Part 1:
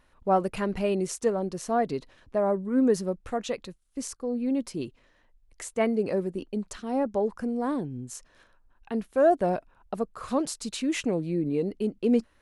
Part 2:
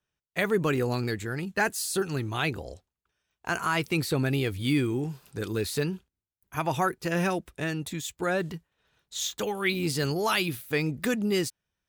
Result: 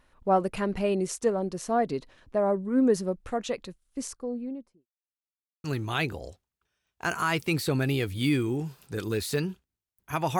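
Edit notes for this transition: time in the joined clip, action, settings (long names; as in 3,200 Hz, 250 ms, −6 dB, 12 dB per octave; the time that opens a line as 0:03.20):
part 1
0:03.99–0:04.87: fade out and dull
0:04.87–0:05.64: silence
0:05.64: continue with part 2 from 0:02.08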